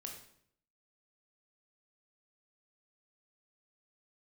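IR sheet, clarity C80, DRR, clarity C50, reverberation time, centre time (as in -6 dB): 8.5 dB, 1.0 dB, 5.5 dB, 0.65 s, 28 ms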